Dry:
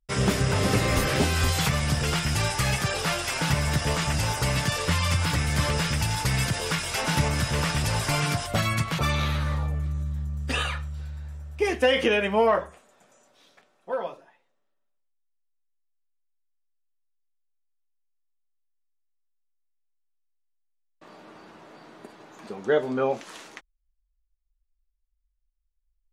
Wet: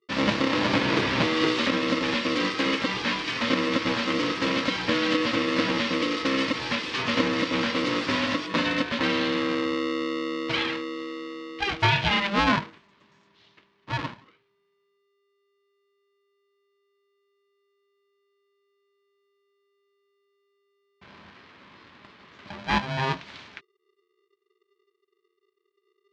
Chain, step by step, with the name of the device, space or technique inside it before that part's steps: 21.3–22.46 HPF 480 Hz 12 dB/oct; ring modulator pedal into a guitar cabinet (polarity switched at an audio rate 400 Hz; speaker cabinet 110–4400 Hz, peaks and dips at 530 Hz -5 dB, 750 Hz -10 dB, 1400 Hz -4 dB); gain +2 dB

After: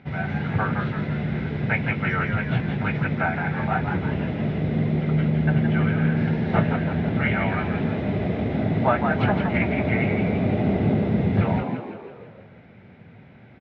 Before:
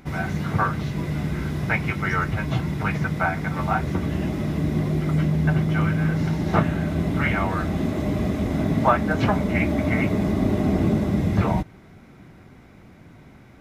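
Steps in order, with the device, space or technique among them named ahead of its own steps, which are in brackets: frequency-shifting delay pedal into a guitar cabinet (frequency-shifting echo 0.166 s, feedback 51%, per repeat +72 Hz, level -6 dB; speaker cabinet 93–3400 Hz, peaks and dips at 110 Hz +4 dB, 310 Hz -9 dB, 1100 Hz -9 dB)

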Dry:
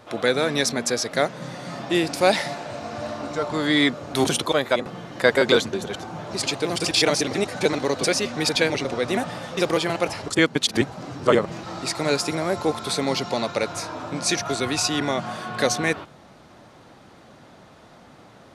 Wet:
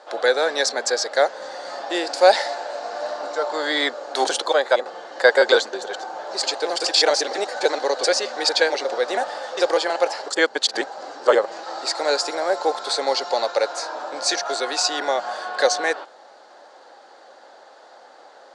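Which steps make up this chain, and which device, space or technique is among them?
phone speaker on a table (speaker cabinet 380–8500 Hz, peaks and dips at 540 Hz +7 dB, 810 Hz +9 dB, 1600 Hz +7 dB, 2400 Hz -5 dB, 4500 Hz +8 dB, 7300 Hz +4 dB); gain -1.5 dB

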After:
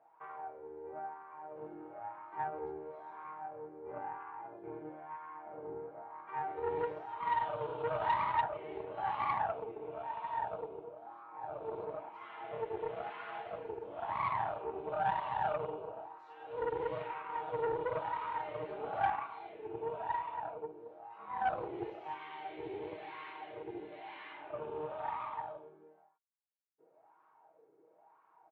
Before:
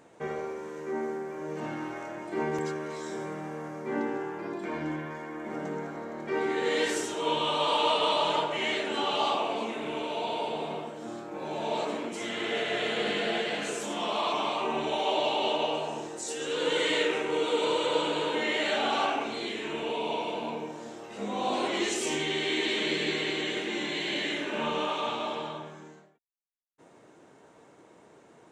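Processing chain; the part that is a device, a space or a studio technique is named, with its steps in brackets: comb 6.3 ms, depth 44%; wah-wah guitar rig (wah 1 Hz 410–1100 Hz, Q 6.5; tube stage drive 29 dB, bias 0.7; speaker cabinet 83–4000 Hz, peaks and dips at 120 Hz +8 dB, 270 Hz -3 dB, 520 Hz -5 dB, 840 Hz +5 dB, 1400 Hz +5 dB, 2400 Hz +5 dB); gain +2.5 dB

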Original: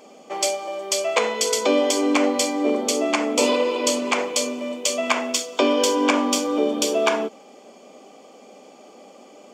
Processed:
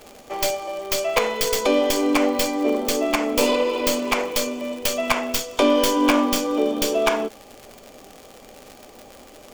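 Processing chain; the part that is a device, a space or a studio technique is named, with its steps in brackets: 5.59–6.26 doubler 17 ms -7.5 dB; record under a worn stylus (tracing distortion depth 0.14 ms; crackle 96/s -29 dBFS; pink noise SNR 31 dB)

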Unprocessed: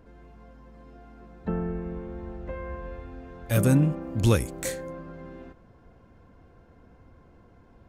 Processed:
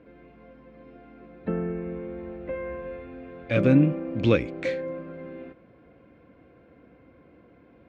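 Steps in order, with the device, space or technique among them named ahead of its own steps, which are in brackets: guitar cabinet (speaker cabinet 93–3900 Hz, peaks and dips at 96 Hz -7 dB, 300 Hz +7 dB, 530 Hz +6 dB, 890 Hz -6 dB, 2300 Hz +9 dB)

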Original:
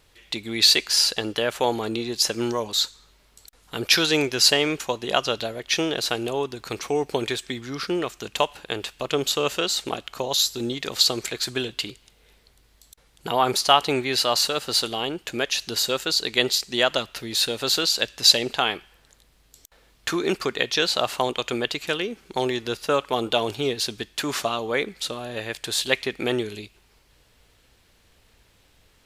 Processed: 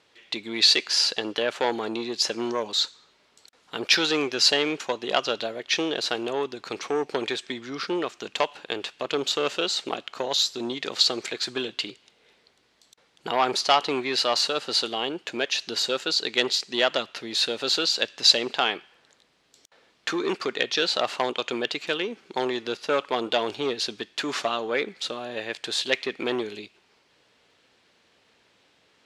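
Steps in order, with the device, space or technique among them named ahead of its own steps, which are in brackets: public-address speaker with an overloaded transformer (core saturation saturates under 2400 Hz; BPF 220–5500 Hz)

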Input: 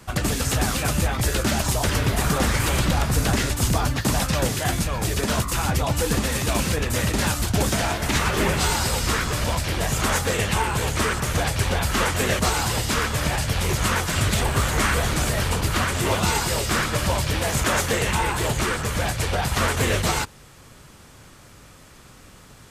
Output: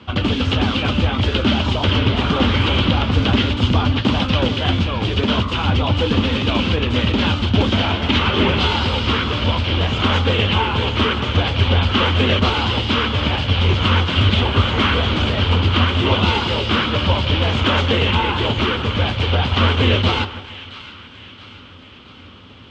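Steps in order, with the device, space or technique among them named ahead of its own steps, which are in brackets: guitar cabinet (speaker cabinet 79–3700 Hz, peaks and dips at 90 Hz +10 dB, 140 Hz -9 dB, 250 Hz +7 dB, 690 Hz -5 dB, 1800 Hz -8 dB, 3100 Hz +10 dB); split-band echo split 1200 Hz, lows 0.154 s, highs 0.673 s, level -15 dB; gain +5 dB

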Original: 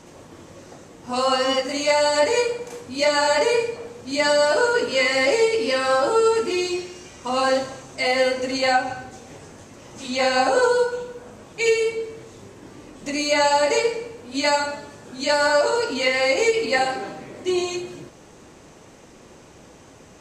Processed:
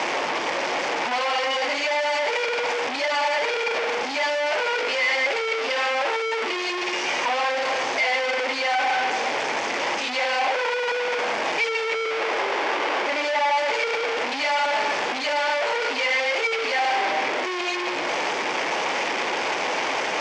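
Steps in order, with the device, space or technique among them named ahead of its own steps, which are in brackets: 11.93–13.56 band shelf 780 Hz +15.5 dB 2.9 oct; home computer beeper (infinite clipping; speaker cabinet 570–4800 Hz, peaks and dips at 850 Hz +4 dB, 1300 Hz -3 dB, 2200 Hz +5 dB, 4000 Hz -7 dB); gain -2.5 dB

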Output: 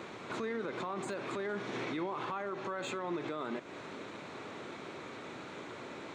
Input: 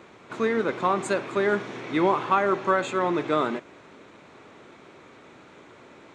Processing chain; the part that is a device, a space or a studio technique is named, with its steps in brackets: broadcast voice chain (HPF 81 Hz; de-esser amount 90%; compressor 3:1, threshold -36 dBFS, peak gain reduction 14.5 dB; bell 4100 Hz +3 dB 0.39 oct; limiter -33 dBFS, peak gain reduction 11 dB); gain +4 dB

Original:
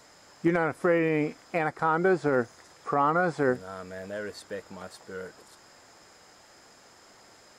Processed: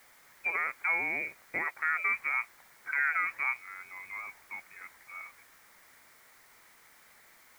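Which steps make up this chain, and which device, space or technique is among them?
scrambled radio voice (BPF 380–2700 Hz; inverted band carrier 2700 Hz; white noise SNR 26 dB); gain -4.5 dB

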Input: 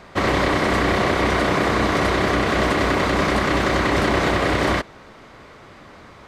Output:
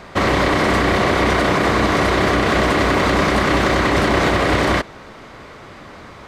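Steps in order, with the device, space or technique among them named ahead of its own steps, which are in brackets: limiter into clipper (limiter -13 dBFS, peak gain reduction 4.5 dB; hard clip -14.5 dBFS, distortion -29 dB); gain +5.5 dB

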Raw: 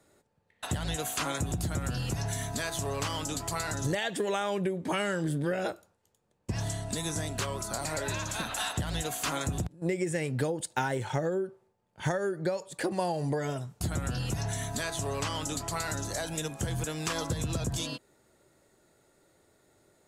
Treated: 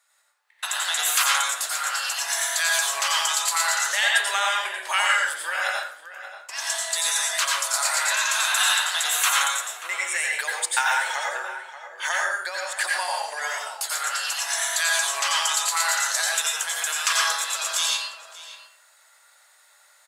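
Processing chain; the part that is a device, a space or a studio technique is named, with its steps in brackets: HPF 1100 Hz 24 dB/oct; 9.08–10.42 notch 4900 Hz, Q 5.6; bell 600 Hz +4 dB 0.51 oct; outdoor echo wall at 100 m, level -11 dB; far laptop microphone (reverb RT60 0.50 s, pre-delay 84 ms, DRR -1.5 dB; HPF 160 Hz; AGC gain up to 9 dB); gain +2 dB

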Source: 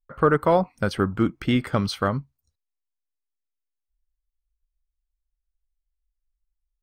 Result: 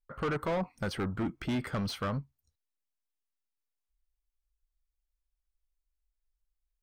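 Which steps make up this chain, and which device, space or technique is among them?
saturation between pre-emphasis and de-emphasis (high shelf 3800 Hz +11.5 dB; soft clip -24 dBFS, distortion -6 dB; high shelf 3800 Hz -11.5 dB); gain -3.5 dB

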